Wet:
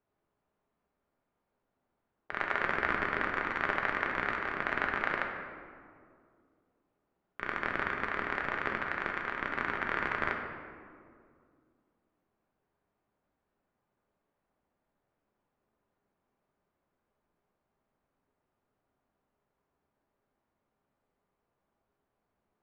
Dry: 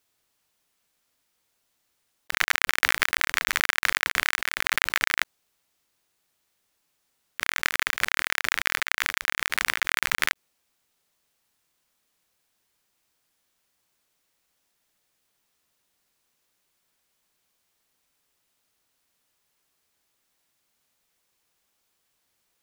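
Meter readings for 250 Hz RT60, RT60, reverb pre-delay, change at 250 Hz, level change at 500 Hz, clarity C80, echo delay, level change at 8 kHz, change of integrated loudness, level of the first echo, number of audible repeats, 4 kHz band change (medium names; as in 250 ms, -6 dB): 2.9 s, 2.2 s, 5 ms, +5.5 dB, +4.0 dB, 5.5 dB, no echo, under -30 dB, -8.5 dB, no echo, no echo, -19.5 dB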